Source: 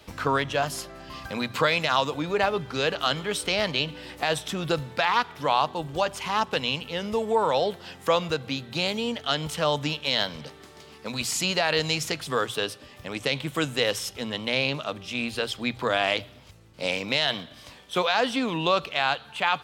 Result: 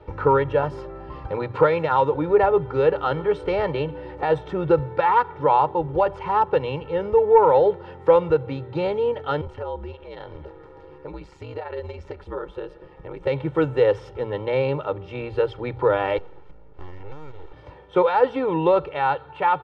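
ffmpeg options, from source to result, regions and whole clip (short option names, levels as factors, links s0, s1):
-filter_complex "[0:a]asettb=1/sr,asplit=3[s0][s1][s2];[s0]atrim=end=9.414[s3];[s1]atrim=start=9.41:end=13.27,asetpts=PTS-STARTPTS,afade=t=in:d=0.004:c=qsin,afade=t=out:st=3.856:d=0.004:c=qsin,acompressor=threshold=0.0141:ratio=2:attack=3.2:release=140:knee=1:detection=peak,aeval=exprs='val(0)*sin(2*PI*70*n/s)':c=same[s4];[s2]atrim=start=13.266[s5];[s3][s4]acrossfade=d=0.004:c1=hsin:c2=qsin[s6];[s6][s5]acrossfade=d=0.004:c1=qsin:c2=hsin,asettb=1/sr,asplit=3[s7][s8][s9];[s7]atrim=end=16.184[s10];[s8]atrim=start=16.18:end=17.53,asetpts=PTS-STARTPTS,afade=t=in:d=0.004:c=qsin,afade=t=out:st=1.346:d=0.004:c=qsin,acompressor=threshold=0.0126:ratio=6:attack=3.2:release=140:knee=1:detection=peak,aeval=exprs='abs(val(0))':c=same[s11];[s9]atrim=start=17.526[s12];[s10][s11]acrossfade=d=0.004:c1=hsin:c2=qsin[s13];[s13][s12]acrossfade=d=0.004:c1=qsin:c2=hsin,lowpass=1000,aecho=1:1:2.2:0.86,acontrast=39"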